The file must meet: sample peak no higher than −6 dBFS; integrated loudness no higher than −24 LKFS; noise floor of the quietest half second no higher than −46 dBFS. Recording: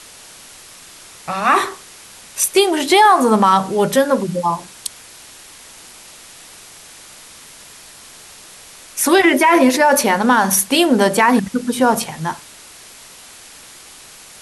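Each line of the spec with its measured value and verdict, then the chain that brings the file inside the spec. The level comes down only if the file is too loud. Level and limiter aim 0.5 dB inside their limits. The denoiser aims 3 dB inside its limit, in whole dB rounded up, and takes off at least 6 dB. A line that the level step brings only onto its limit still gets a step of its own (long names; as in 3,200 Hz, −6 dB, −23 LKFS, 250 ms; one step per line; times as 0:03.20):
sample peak −3.0 dBFS: out of spec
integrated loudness −14.5 LKFS: out of spec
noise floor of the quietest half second −41 dBFS: out of spec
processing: level −10 dB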